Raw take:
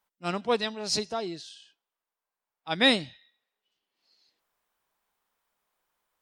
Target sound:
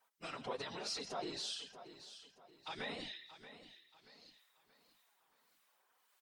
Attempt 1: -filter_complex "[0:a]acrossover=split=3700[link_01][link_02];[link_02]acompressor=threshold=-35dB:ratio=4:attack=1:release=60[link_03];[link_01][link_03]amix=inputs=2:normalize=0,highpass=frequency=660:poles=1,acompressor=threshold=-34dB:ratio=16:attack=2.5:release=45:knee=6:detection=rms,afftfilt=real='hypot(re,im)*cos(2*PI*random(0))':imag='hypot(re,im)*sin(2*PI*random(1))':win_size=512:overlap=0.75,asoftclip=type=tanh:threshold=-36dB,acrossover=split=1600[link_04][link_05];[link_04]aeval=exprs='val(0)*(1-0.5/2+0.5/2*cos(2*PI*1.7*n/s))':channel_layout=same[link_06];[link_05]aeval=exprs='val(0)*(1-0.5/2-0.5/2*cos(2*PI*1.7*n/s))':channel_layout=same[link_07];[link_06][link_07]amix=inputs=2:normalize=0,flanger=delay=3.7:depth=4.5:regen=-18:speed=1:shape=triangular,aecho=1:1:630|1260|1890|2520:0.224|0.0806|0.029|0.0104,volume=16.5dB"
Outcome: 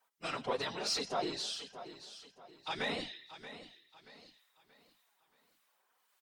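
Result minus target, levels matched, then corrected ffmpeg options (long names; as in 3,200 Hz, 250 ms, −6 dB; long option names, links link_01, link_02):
downward compressor: peak gain reduction −8.5 dB
-filter_complex "[0:a]acrossover=split=3700[link_01][link_02];[link_02]acompressor=threshold=-35dB:ratio=4:attack=1:release=60[link_03];[link_01][link_03]amix=inputs=2:normalize=0,highpass=frequency=660:poles=1,acompressor=threshold=-43dB:ratio=16:attack=2.5:release=45:knee=6:detection=rms,afftfilt=real='hypot(re,im)*cos(2*PI*random(0))':imag='hypot(re,im)*sin(2*PI*random(1))':win_size=512:overlap=0.75,asoftclip=type=tanh:threshold=-36dB,acrossover=split=1600[link_04][link_05];[link_04]aeval=exprs='val(0)*(1-0.5/2+0.5/2*cos(2*PI*1.7*n/s))':channel_layout=same[link_06];[link_05]aeval=exprs='val(0)*(1-0.5/2-0.5/2*cos(2*PI*1.7*n/s))':channel_layout=same[link_07];[link_06][link_07]amix=inputs=2:normalize=0,flanger=delay=3.7:depth=4.5:regen=-18:speed=1:shape=triangular,aecho=1:1:630|1260|1890|2520:0.224|0.0806|0.029|0.0104,volume=16.5dB"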